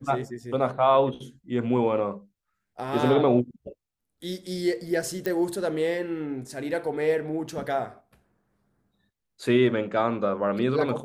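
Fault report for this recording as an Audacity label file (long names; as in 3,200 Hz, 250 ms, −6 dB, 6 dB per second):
5.260000	5.260000	click −15 dBFS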